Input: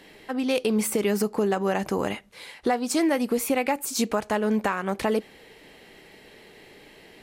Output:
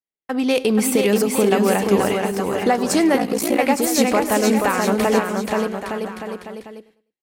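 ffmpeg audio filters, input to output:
-filter_complex "[0:a]agate=range=0.00126:threshold=0.0112:ratio=16:detection=peak,acontrast=44,asplit=2[s0][s1];[s1]aecho=0:1:480|864|1171|1417|1614:0.631|0.398|0.251|0.158|0.1[s2];[s0][s2]amix=inputs=2:normalize=0,asplit=3[s3][s4][s5];[s3]afade=t=out:st=3.17:d=0.02[s6];[s4]aeval=exprs='val(0)*sin(2*PI*29*n/s)':c=same,afade=t=in:st=3.17:d=0.02,afade=t=out:st=3.57:d=0.02[s7];[s5]afade=t=in:st=3.57:d=0.02[s8];[s6][s7][s8]amix=inputs=3:normalize=0,asplit=2[s9][s10];[s10]aecho=0:1:101|202|303:0.106|0.0392|0.0145[s11];[s9][s11]amix=inputs=2:normalize=0"

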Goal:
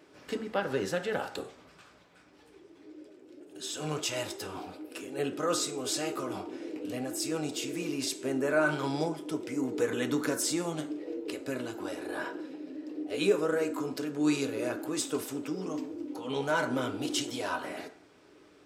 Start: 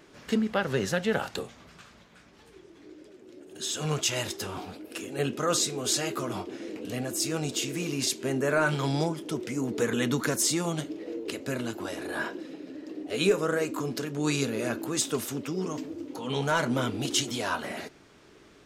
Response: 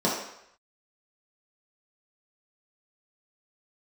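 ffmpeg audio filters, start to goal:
-filter_complex "[0:a]highpass=62,asplit=2[s0][s1];[1:a]atrim=start_sample=2205,asetrate=61740,aresample=44100[s2];[s1][s2]afir=irnorm=-1:irlink=0,volume=0.141[s3];[s0][s3]amix=inputs=2:normalize=0,volume=0.501"

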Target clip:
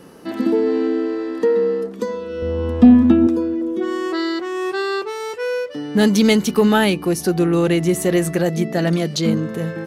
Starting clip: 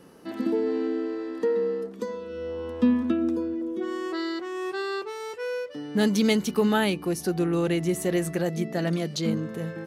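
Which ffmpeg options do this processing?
-filter_complex "[0:a]asettb=1/sr,asplit=3[s0][s1][s2];[s0]atrim=end=2.424[s3];[s1]atrim=start=2.42:end=3.27,asetpts=PTS-STARTPTS,afade=t=in:d=0.004:c=qsin,afade=t=out:st=0.846:d=0.004:c=qsin,bass=f=250:g=12,treble=f=4000:g=-1[s4];[s2]atrim=start=3.266[s5];[s3][s4]acrossfade=d=0.004:c1=hsin:c2=qsin[s6];[s6][s5]acrossfade=d=0.004:c1=qsin:c2=hsin,acontrast=89,volume=1.12"

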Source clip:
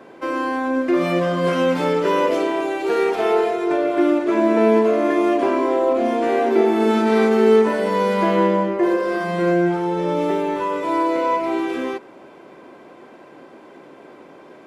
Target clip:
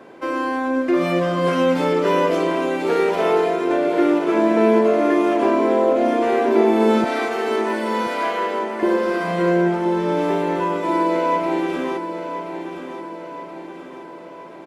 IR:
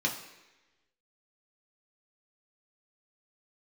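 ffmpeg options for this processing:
-filter_complex "[0:a]asettb=1/sr,asplit=3[s0][s1][s2];[s0]atrim=end=7.044[s3];[s1]atrim=start=7.04:end=8.83,asetpts=PTS-STARTPTS,afade=t=in:d=0.004:c=qsin,afade=t=out:st=1.786:d=0.004:c=qsin,highpass=830[s4];[s2]atrim=start=8.826[s5];[s3][s4]acrossfade=d=0.004:c1=hsin:c2=qsin[s6];[s6][s5]acrossfade=d=0.004:c1=qsin:c2=hsin,aecho=1:1:1028|2056|3084|4112|5140|6168:0.335|0.174|0.0906|0.0471|0.0245|0.0127"

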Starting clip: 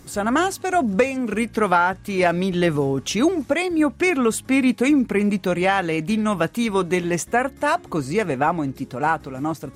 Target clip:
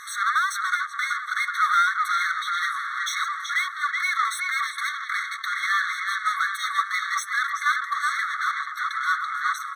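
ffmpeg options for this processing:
-filter_complex "[0:a]asplit=2[s0][s1];[s1]adelay=375,lowpass=f=1800:p=1,volume=0.355,asplit=2[s2][s3];[s3]adelay=375,lowpass=f=1800:p=1,volume=0.5,asplit=2[s4][s5];[s5]adelay=375,lowpass=f=1800:p=1,volume=0.5,asplit=2[s6][s7];[s7]adelay=375,lowpass=f=1800:p=1,volume=0.5,asplit=2[s8][s9];[s9]adelay=375,lowpass=f=1800:p=1,volume=0.5,asplit=2[s10][s11];[s11]adelay=375,lowpass=f=1800:p=1,volume=0.5[s12];[s0][s2][s4][s6][s8][s10][s12]amix=inputs=7:normalize=0,asplit=2[s13][s14];[s14]highpass=f=720:p=1,volume=44.7,asoftclip=type=tanh:threshold=0.631[s15];[s13][s15]amix=inputs=2:normalize=0,lowpass=f=1100:p=1,volume=0.501,afftfilt=real='re*eq(mod(floor(b*sr/1024/1100),2),1)':imag='im*eq(mod(floor(b*sr/1024/1100),2),1)':win_size=1024:overlap=0.75,volume=0.794"

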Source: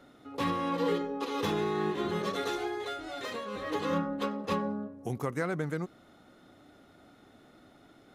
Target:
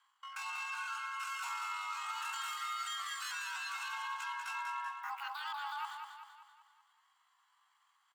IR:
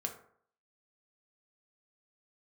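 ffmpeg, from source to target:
-filter_complex "[0:a]agate=range=0.0631:threshold=0.00398:ratio=16:detection=peak,highpass=130,equalizer=f=700:w=3.3:g=-3,alimiter=level_in=1.41:limit=0.0631:level=0:latency=1:release=12,volume=0.708,areverse,acompressor=threshold=0.00447:ratio=8,areverse,afreqshift=300,asetrate=83250,aresample=44100,atempo=0.529732,asplit=2[s0][s1];[s1]aecho=0:1:192|384|576|768|960|1152:0.501|0.256|0.13|0.0665|0.0339|0.0173[s2];[s0][s2]amix=inputs=2:normalize=0,volume=2.51"

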